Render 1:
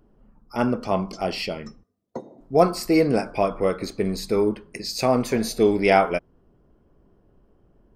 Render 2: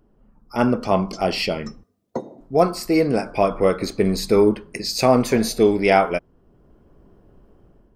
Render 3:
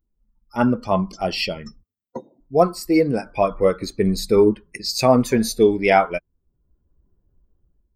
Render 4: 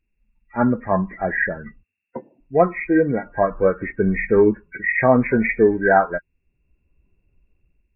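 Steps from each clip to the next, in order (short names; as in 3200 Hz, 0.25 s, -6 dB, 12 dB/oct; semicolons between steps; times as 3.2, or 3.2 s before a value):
AGC gain up to 8 dB; gain -1 dB
per-bin expansion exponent 1.5; gain +2.5 dB
nonlinear frequency compression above 1400 Hz 4:1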